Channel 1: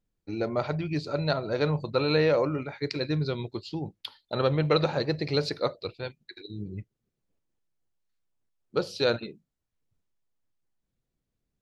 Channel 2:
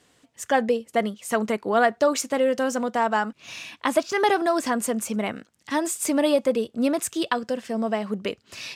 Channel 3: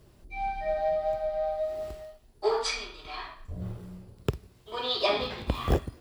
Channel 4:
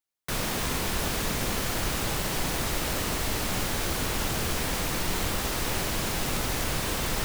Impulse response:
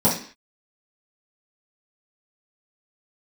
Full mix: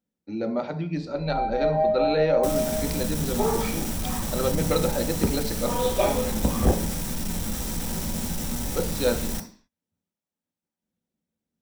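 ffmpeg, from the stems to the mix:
-filter_complex "[0:a]highpass=110,volume=-4dB,asplit=2[a][b];[b]volume=-20.5dB[c];[2:a]lowpass=2.2k,adelay=950,volume=-0.5dB,asplit=2[d][e];[e]volume=-19dB[f];[3:a]bass=f=250:g=8,treble=f=4k:g=10,asoftclip=type=hard:threshold=-21.5dB,adelay=2150,volume=-9.5dB,asplit=2[g][h];[h]volume=-17dB[i];[4:a]atrim=start_sample=2205[j];[c][f][i]amix=inputs=3:normalize=0[k];[k][j]afir=irnorm=-1:irlink=0[l];[a][d][g][l]amix=inputs=4:normalize=0"

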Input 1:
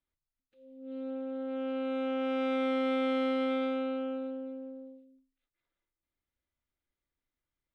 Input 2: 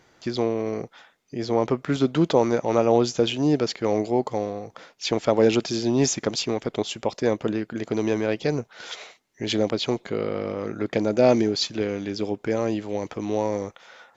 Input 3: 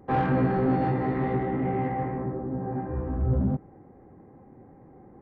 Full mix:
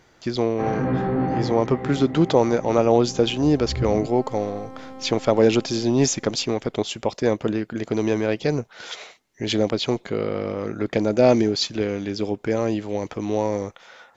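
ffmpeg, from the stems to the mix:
-filter_complex "[0:a]aeval=exprs='max(val(0),0)':c=same,adelay=1700,volume=-7dB[a];[1:a]lowshelf=f=68:g=8,volume=1.5dB,asplit=2[b][c];[2:a]acontrast=80,adelay=500,volume=-5.5dB[d];[c]apad=whole_len=252009[e];[d][e]sidechaincompress=threshold=-21dB:ratio=8:attack=16:release=488[f];[a][b][f]amix=inputs=3:normalize=0"

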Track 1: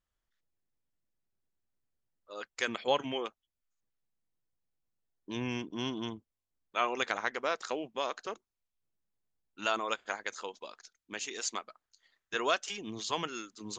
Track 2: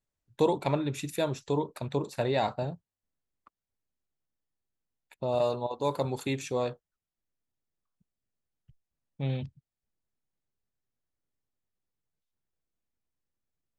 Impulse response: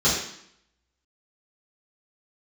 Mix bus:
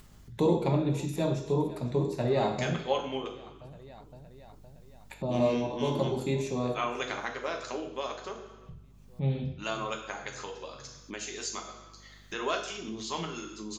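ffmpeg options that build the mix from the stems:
-filter_complex "[0:a]volume=-3dB,asplit=2[a][b];[b]volume=-18.5dB[c];[1:a]lowshelf=f=270:g=6.5,volume=-5dB,asplit=3[d][e][f];[e]volume=-17.5dB[g];[f]volume=-16.5dB[h];[2:a]atrim=start_sample=2205[i];[c][g]amix=inputs=2:normalize=0[j];[j][i]afir=irnorm=-1:irlink=0[k];[h]aecho=0:1:514|1028|1542|2056|2570:1|0.36|0.13|0.0467|0.0168[l];[a][d][k][l]amix=inputs=4:normalize=0,acompressor=mode=upward:threshold=-34dB:ratio=2.5,aeval=exprs='val(0)+0.00178*(sin(2*PI*50*n/s)+sin(2*PI*2*50*n/s)/2+sin(2*PI*3*50*n/s)/3+sin(2*PI*4*50*n/s)/4+sin(2*PI*5*50*n/s)/5)':c=same"

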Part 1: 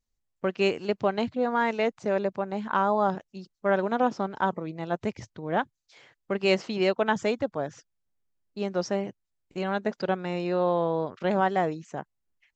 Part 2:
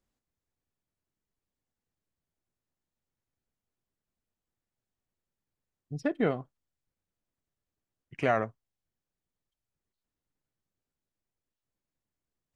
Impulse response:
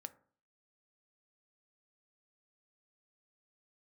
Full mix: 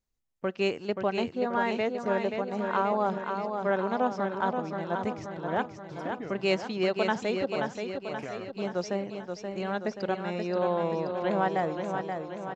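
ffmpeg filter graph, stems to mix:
-filter_complex "[0:a]volume=-4.5dB,asplit=3[a][b][c];[b]volume=-10.5dB[d];[c]volume=-4.5dB[e];[1:a]acompressor=threshold=-27dB:ratio=6,volume=-8dB[f];[2:a]atrim=start_sample=2205[g];[d][g]afir=irnorm=-1:irlink=0[h];[e]aecho=0:1:529|1058|1587|2116|2645|3174|3703|4232|4761:1|0.57|0.325|0.185|0.106|0.0602|0.0343|0.0195|0.0111[i];[a][f][h][i]amix=inputs=4:normalize=0"

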